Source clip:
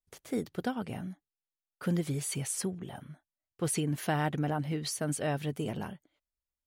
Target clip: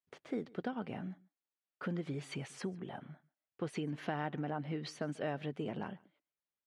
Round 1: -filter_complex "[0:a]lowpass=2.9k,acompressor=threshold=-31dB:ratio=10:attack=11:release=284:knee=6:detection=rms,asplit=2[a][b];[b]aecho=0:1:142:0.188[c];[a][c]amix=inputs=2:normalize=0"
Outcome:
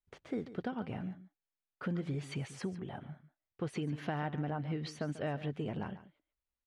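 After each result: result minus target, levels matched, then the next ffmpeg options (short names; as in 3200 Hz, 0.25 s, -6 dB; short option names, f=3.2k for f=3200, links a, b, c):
echo-to-direct +9.5 dB; 125 Hz band +2.5 dB
-filter_complex "[0:a]lowpass=2.9k,acompressor=threshold=-31dB:ratio=10:attack=11:release=284:knee=6:detection=rms,asplit=2[a][b];[b]aecho=0:1:142:0.0631[c];[a][c]amix=inputs=2:normalize=0"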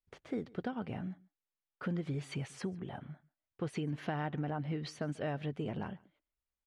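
125 Hz band +2.5 dB
-filter_complex "[0:a]lowpass=2.9k,acompressor=threshold=-31dB:ratio=10:attack=11:release=284:knee=6:detection=rms,highpass=170,asplit=2[a][b];[b]aecho=0:1:142:0.0631[c];[a][c]amix=inputs=2:normalize=0"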